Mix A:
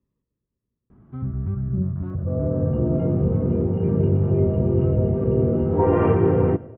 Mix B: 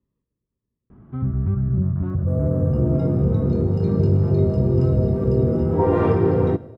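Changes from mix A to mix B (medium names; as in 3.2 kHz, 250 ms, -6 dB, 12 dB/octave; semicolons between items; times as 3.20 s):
first sound +4.5 dB; second sound: remove brick-wall FIR low-pass 3.2 kHz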